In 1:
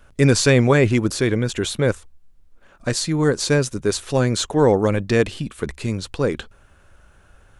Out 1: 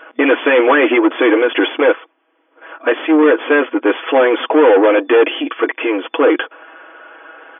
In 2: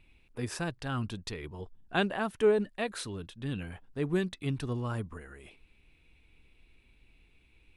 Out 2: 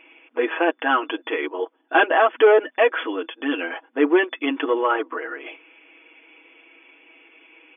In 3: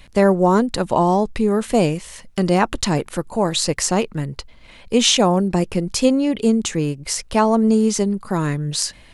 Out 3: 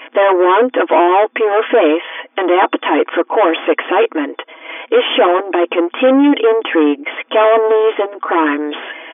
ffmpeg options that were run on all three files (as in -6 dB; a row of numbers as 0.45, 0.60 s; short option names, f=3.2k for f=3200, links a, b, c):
-filter_complex "[0:a]aecho=1:1:6.2:0.79,asplit=2[a][b];[b]highpass=f=720:p=1,volume=29dB,asoftclip=type=tanh:threshold=-0.5dB[c];[a][c]amix=inputs=2:normalize=0,lowpass=f=1.4k:p=1,volume=-6dB,afftfilt=real='re*between(b*sr/4096,240,3500)':imag='im*between(b*sr/4096,240,3500)':win_size=4096:overlap=0.75,volume=-1dB"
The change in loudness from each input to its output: +6.0, +12.0, +5.5 LU